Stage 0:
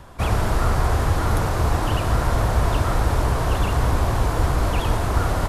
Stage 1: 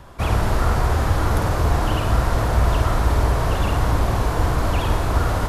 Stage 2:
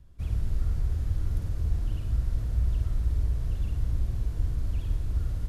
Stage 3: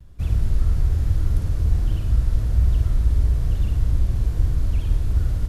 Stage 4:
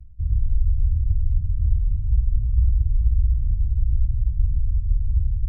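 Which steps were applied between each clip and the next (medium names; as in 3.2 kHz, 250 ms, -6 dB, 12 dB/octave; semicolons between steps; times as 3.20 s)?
peaking EQ 8.9 kHz -2.5 dB 0.72 oct; on a send: flutter echo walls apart 8.9 m, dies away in 0.44 s
amplifier tone stack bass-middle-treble 10-0-1
vibrato 1.2 Hz 56 cents; trim +8 dB
resonances exaggerated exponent 3; reverse; upward compressor, threshold -23 dBFS; reverse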